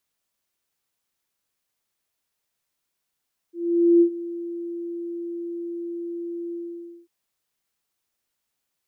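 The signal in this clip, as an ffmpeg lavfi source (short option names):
-f lavfi -i "aevalsrc='0.282*sin(2*PI*342*t)':d=3.544:s=44100,afade=t=in:d=0.478,afade=t=out:st=0.478:d=0.086:silence=0.133,afade=t=out:st=3:d=0.544"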